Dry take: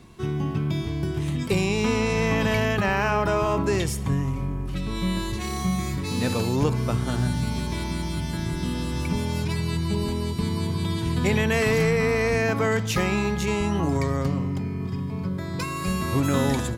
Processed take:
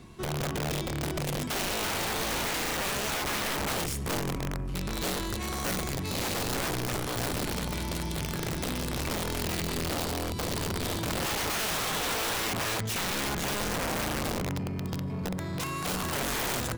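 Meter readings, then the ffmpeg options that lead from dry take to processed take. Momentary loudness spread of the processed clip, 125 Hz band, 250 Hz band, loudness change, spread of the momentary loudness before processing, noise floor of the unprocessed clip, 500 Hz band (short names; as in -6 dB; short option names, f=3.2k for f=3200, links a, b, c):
4 LU, -10.0 dB, -9.0 dB, -5.5 dB, 7 LU, -30 dBFS, -8.5 dB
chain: -af "aeval=exprs='(mod(10.6*val(0)+1,2)-1)/10.6':c=same,aeval=exprs='0.0944*(cos(1*acos(clip(val(0)/0.0944,-1,1)))-cos(1*PI/2))+0.0133*(cos(5*acos(clip(val(0)/0.0944,-1,1)))-cos(5*PI/2))':c=same,volume=-5dB"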